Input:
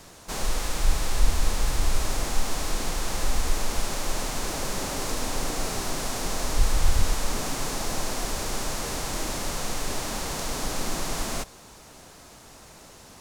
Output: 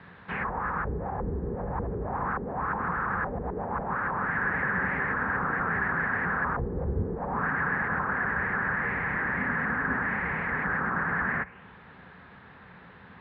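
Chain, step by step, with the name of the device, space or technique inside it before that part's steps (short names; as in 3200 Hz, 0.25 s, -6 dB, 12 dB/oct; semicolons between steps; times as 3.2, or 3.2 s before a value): envelope filter bass rig (envelope low-pass 400–4100 Hz down, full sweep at -15.5 dBFS; speaker cabinet 63–2000 Hz, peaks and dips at 180 Hz +7 dB, 320 Hz -8 dB, 630 Hz -9 dB, 1700 Hz +8 dB); 9.38–10.07 bell 250 Hz +11.5 dB 0.28 oct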